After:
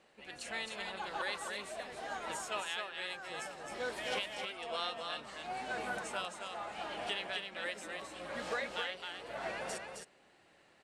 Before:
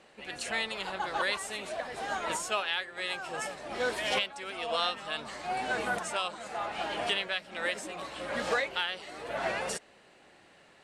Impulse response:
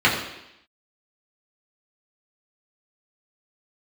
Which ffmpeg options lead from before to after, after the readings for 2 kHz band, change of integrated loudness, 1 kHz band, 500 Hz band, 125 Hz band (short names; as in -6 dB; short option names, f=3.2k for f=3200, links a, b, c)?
-7.0 dB, -7.0 dB, -7.0 dB, -7.0 dB, -7.0 dB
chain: -af "aecho=1:1:264:0.562,volume=-8dB"